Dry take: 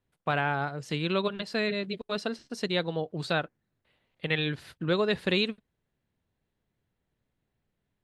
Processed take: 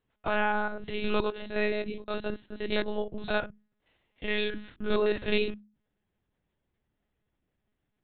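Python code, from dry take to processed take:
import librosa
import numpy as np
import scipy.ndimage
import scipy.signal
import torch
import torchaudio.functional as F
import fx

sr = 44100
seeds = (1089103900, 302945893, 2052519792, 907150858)

y = fx.spec_steps(x, sr, hold_ms=50)
y = fx.hum_notches(y, sr, base_hz=50, count=7)
y = fx.lpc_monotone(y, sr, seeds[0], pitch_hz=210.0, order=16)
y = F.gain(torch.from_numpy(y), 2.0).numpy()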